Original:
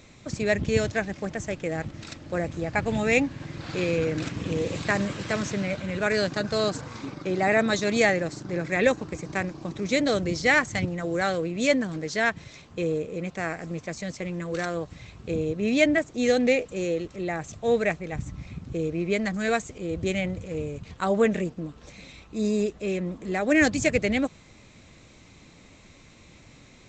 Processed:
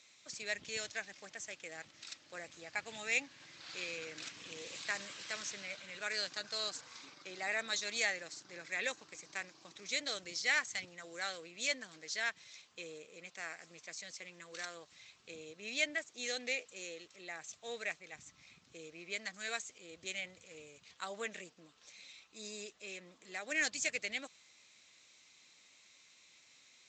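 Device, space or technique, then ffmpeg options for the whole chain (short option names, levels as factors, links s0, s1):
piezo pickup straight into a mixer: -af "lowpass=5800,aderivative,volume=1.12"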